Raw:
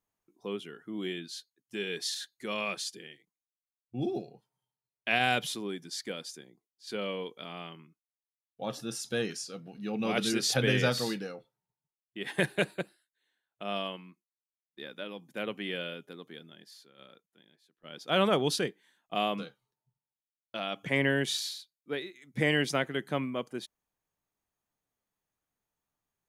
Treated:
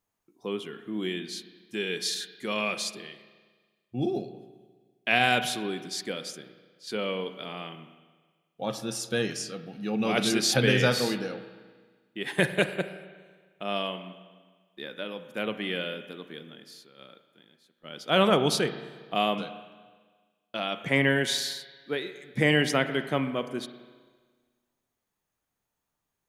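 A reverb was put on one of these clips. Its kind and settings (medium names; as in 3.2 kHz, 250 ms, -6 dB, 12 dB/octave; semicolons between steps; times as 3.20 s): spring tank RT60 1.5 s, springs 33/37 ms, chirp 30 ms, DRR 10 dB; trim +4 dB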